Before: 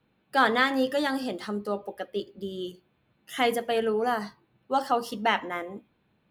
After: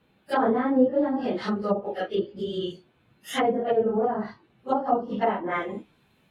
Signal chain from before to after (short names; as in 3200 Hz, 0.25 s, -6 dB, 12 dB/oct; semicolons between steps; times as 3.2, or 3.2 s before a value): phase scrambler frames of 0.1 s; treble ducked by the level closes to 580 Hz, closed at -23.5 dBFS; high shelf 3400 Hz +2.5 dB, from 5.18 s +11.5 dB; gain +5.5 dB